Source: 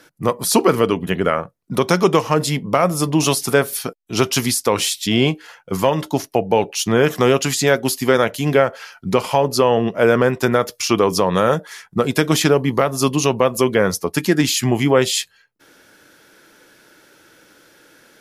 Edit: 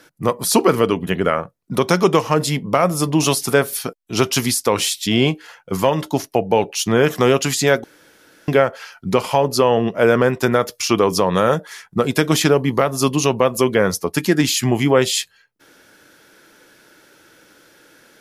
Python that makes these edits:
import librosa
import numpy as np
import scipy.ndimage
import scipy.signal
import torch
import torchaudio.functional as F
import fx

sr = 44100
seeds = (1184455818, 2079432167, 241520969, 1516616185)

y = fx.edit(x, sr, fx.room_tone_fill(start_s=7.84, length_s=0.64), tone=tone)